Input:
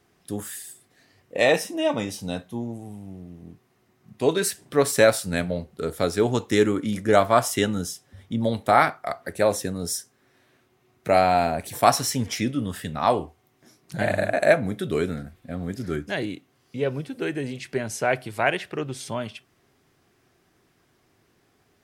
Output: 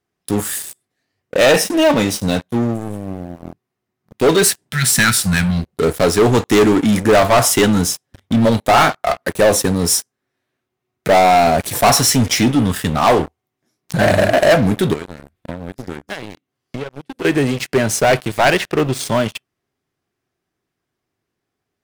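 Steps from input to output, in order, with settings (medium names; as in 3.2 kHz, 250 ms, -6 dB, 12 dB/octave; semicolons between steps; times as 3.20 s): 4.73–5.65 s: spectral replace 240–1300 Hz; 14.93–17.25 s: compression 10:1, threshold -37 dBFS, peak gain reduction 17.5 dB; waveshaping leveller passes 5; trim -4 dB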